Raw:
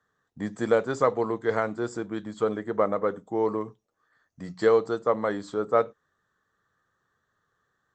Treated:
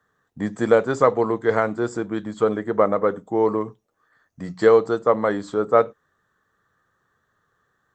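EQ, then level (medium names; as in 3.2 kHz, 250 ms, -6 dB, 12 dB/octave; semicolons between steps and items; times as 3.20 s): peaking EQ 4.9 kHz -3.5 dB 1.4 oct; +6.0 dB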